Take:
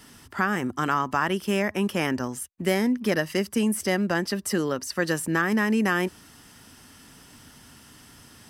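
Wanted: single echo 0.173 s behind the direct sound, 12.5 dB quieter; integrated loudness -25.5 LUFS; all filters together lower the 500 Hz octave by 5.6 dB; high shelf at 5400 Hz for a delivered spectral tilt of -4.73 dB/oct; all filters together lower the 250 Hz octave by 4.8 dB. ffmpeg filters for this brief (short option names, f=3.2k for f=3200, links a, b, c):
-af "equalizer=f=250:t=o:g=-5,equalizer=f=500:t=o:g=-5.5,highshelf=f=5.4k:g=-9,aecho=1:1:173:0.237,volume=3dB"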